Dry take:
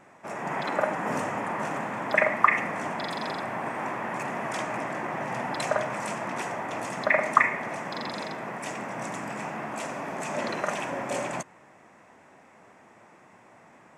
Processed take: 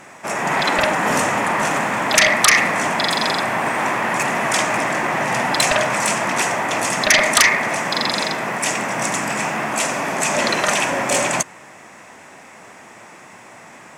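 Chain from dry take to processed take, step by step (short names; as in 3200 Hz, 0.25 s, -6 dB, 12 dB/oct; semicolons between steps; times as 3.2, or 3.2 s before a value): sine folder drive 16 dB, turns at -3.5 dBFS; high shelf 2100 Hz +11.5 dB; gain -10 dB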